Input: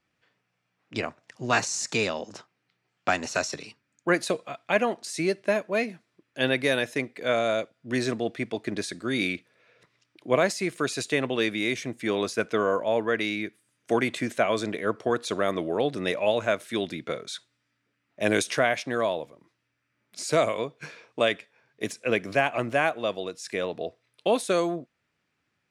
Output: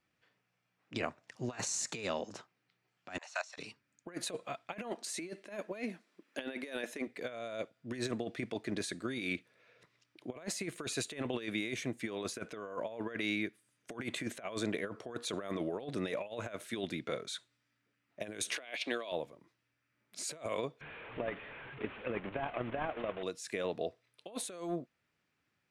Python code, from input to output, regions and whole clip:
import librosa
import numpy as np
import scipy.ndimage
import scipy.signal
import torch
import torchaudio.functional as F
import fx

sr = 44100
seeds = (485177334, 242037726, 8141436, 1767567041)

y = fx.chain(x, sr, fx.steep_highpass(hz=640.0, slope=48),
    fx.level_steps(step_db=15),
    fx.air_absorb(metres=51.0), at=(3.18, 3.58))
y = fx.chain(y, sr, fx.brickwall_highpass(low_hz=170.0),
    fx.band_squash(depth_pct=40), at=(4.73, 7.07))
y = fx.chain(y, sr, fx.highpass(hz=250.0, slope=24),
    fx.band_shelf(hz=3300.0, db=11.0, octaves=1.3), at=(18.56, 19.12))
y = fx.chain(y, sr, fx.delta_mod(bps=16000, step_db=-31.0),
    fx.level_steps(step_db=9), at=(20.81, 23.23))
y = fx.dynamic_eq(y, sr, hz=5200.0, q=3.9, threshold_db=-53.0, ratio=4.0, max_db=-6)
y = fx.over_compress(y, sr, threshold_db=-29.0, ratio=-0.5)
y = y * 10.0 ** (-8.0 / 20.0)